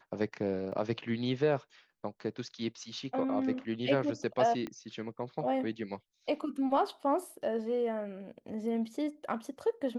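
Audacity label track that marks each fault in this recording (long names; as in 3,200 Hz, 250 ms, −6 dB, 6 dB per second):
0.720000	0.720000	drop-out 3.6 ms
4.670000	4.670000	click −25 dBFS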